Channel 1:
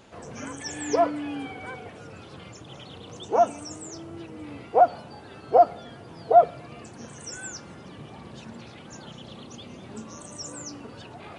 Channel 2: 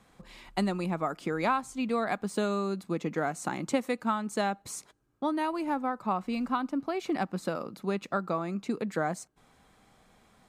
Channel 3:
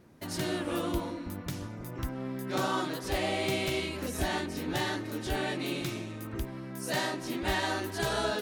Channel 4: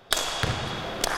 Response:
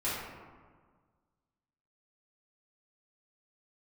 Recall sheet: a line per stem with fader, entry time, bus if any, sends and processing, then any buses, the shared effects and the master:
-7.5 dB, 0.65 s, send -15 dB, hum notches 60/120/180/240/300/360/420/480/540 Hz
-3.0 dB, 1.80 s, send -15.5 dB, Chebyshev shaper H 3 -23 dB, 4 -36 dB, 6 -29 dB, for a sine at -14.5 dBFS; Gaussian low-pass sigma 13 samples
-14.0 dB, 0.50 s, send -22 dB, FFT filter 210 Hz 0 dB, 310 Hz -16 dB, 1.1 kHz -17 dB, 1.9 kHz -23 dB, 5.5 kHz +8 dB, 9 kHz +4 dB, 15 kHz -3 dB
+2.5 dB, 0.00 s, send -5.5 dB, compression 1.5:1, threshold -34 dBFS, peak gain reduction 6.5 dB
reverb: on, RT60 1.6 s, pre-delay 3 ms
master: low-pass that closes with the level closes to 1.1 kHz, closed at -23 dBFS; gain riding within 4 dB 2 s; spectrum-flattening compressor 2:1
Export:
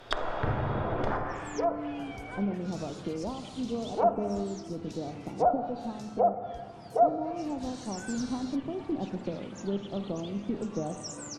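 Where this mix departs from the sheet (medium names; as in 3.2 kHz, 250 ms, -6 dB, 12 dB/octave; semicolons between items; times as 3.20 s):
stem 3: entry 0.50 s -> 0.15 s; master: missing spectrum-flattening compressor 2:1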